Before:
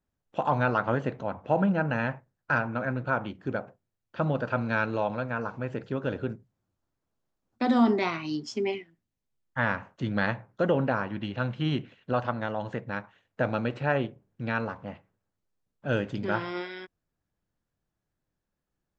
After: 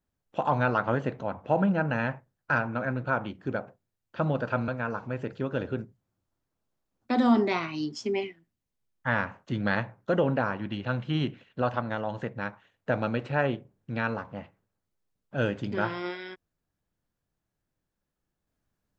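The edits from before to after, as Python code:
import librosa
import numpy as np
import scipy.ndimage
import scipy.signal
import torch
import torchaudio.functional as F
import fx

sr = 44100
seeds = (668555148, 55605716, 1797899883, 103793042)

y = fx.edit(x, sr, fx.cut(start_s=4.68, length_s=0.51), tone=tone)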